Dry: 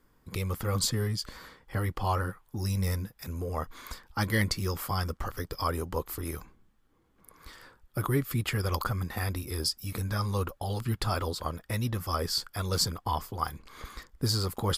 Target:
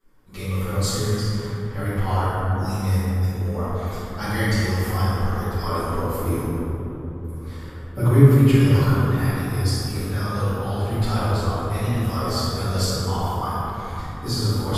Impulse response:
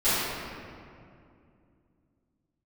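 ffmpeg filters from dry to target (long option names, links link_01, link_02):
-filter_complex "[0:a]asettb=1/sr,asplit=3[link_01][link_02][link_03];[link_01]atrim=end=6.184[link_04];[link_02]atrim=start=6.18:end=8.32,asetpts=PTS-STARTPTS,afade=type=in:duration=0.004:curve=qsin,afade=type=out:start_time=2.136:duration=0.004:curve=qsin,equalizer=frequency=125:width_type=o:width=1:gain=10,equalizer=frequency=250:width_type=o:width=1:gain=6,equalizer=frequency=500:width_type=o:width=1:gain=5[link_05];[link_03]atrim=start=8.316[link_06];[link_04][link_05]acrossfade=duration=0.004:curve1=hsin:curve2=qsin[link_07];[link_07][link_06]acrossfade=duration=0.004:curve1=qsin:curve2=hsin[link_08];[1:a]atrim=start_sample=2205,asetrate=28665,aresample=44100[link_09];[link_08][link_09]afir=irnorm=-1:irlink=0,volume=-12.5dB"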